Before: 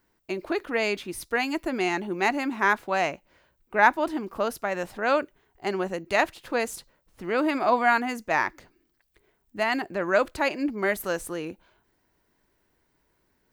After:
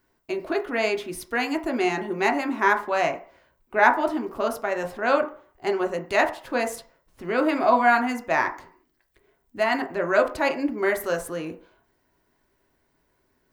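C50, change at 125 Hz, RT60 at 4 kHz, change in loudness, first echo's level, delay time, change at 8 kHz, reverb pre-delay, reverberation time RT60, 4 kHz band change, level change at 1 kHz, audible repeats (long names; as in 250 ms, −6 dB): 13.0 dB, 0.0 dB, 0.45 s, +2.0 dB, no echo audible, no echo audible, 0.0 dB, 3 ms, 0.45 s, 0.0 dB, +2.5 dB, no echo audible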